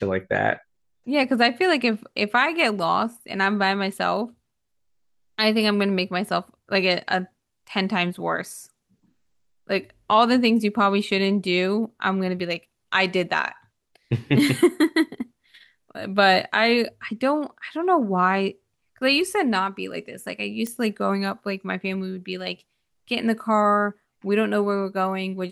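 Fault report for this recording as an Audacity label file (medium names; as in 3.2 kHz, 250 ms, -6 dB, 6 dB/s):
20.670000	20.670000	pop -15 dBFS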